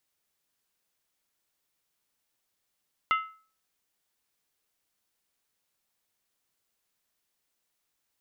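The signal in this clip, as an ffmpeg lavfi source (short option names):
-f lavfi -i "aevalsrc='0.106*pow(10,-3*t/0.41)*sin(2*PI*1300*t)+0.0531*pow(10,-3*t/0.325)*sin(2*PI*2072.2*t)+0.0266*pow(10,-3*t/0.281)*sin(2*PI*2776.8*t)+0.0133*pow(10,-3*t/0.271)*sin(2*PI*2984.8*t)+0.00668*pow(10,-3*t/0.252)*sin(2*PI*3448.9*t)':d=0.63:s=44100"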